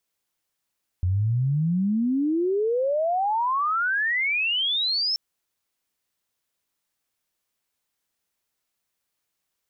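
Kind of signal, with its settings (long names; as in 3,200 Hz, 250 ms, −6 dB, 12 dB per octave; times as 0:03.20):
glide logarithmic 87 Hz → 5,400 Hz −19.5 dBFS → −21.5 dBFS 4.13 s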